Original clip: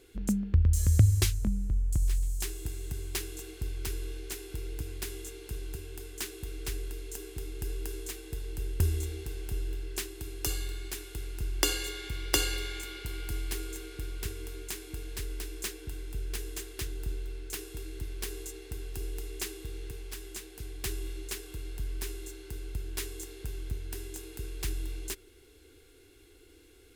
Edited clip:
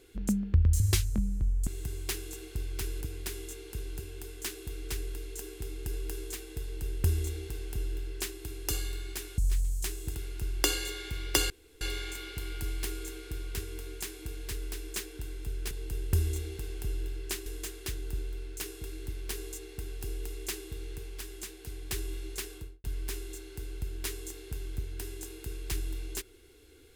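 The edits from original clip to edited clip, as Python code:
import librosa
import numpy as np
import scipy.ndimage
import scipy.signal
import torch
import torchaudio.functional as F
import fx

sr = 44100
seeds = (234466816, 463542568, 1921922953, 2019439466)

y = fx.studio_fade_out(x, sr, start_s=21.46, length_s=0.31)
y = fx.edit(y, sr, fx.cut(start_s=0.8, length_s=0.29),
    fx.move(start_s=1.96, length_s=0.77, to_s=11.14),
    fx.cut(start_s=4.07, length_s=0.7),
    fx.duplicate(start_s=8.38, length_s=1.75, to_s=16.39),
    fx.insert_room_tone(at_s=12.49, length_s=0.31), tone=tone)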